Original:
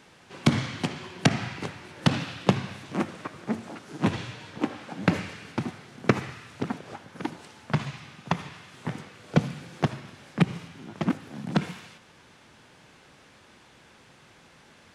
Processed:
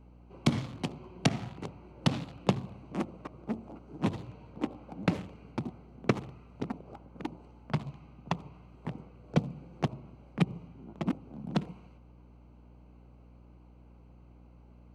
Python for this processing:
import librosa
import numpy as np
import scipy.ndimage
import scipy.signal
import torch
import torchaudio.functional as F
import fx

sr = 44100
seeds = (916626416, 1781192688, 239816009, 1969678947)

y = fx.wiener(x, sr, points=25)
y = fx.add_hum(y, sr, base_hz=60, snr_db=19)
y = fx.dynamic_eq(y, sr, hz=1600.0, q=2.5, threshold_db=-50.0, ratio=4.0, max_db=-6)
y = y * 10.0 ** (-5.0 / 20.0)